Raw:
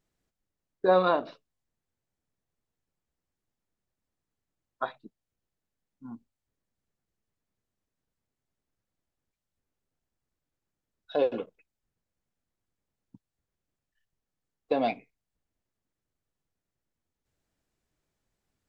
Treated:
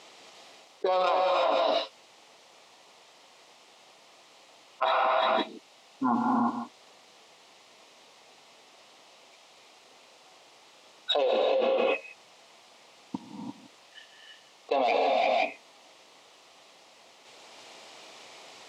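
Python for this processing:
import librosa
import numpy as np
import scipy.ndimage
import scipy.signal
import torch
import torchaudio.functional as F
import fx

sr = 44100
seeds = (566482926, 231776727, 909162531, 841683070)

y = fx.tracing_dist(x, sr, depth_ms=0.08)
y = fx.bandpass_edges(y, sr, low_hz=780.0, high_hz=4100.0)
y = fx.peak_eq(y, sr, hz=1600.0, db=-14.5, octaves=0.58)
y = y + 10.0 ** (-14.5 / 20.0) * np.pad(y, (int(164 * sr / 1000.0), 0))[:len(y)]
y = fx.rev_gated(y, sr, seeds[0], gate_ms=370, shape='rising', drr_db=-0.5)
y = fx.env_flatten(y, sr, amount_pct=100)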